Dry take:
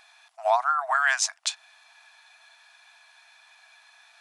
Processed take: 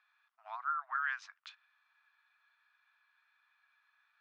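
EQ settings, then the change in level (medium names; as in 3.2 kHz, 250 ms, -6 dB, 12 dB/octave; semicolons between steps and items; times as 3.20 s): dynamic bell 2.7 kHz, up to +4 dB, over -40 dBFS, Q 0.85; ladder high-pass 1.1 kHz, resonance 55%; distance through air 260 m; -9.0 dB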